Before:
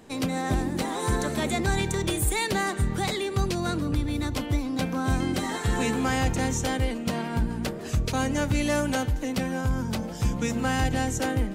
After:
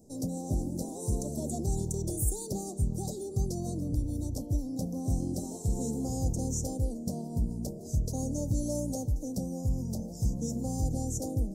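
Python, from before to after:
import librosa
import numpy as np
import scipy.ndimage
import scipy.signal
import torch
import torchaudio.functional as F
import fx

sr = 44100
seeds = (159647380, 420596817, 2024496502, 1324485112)

y = scipy.signal.sosfilt(scipy.signal.ellip(3, 1.0, 80, [670.0, 5600.0], 'bandstop', fs=sr, output='sos'), x)
y = fx.bass_treble(y, sr, bass_db=5, treble_db=5)
y = y * librosa.db_to_amplitude(-8.0)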